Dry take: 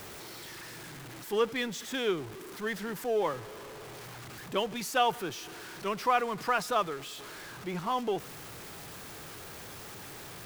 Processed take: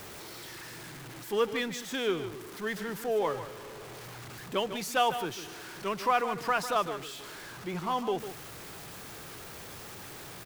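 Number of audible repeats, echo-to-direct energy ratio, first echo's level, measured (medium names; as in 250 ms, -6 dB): 1, -11.0 dB, -11.0 dB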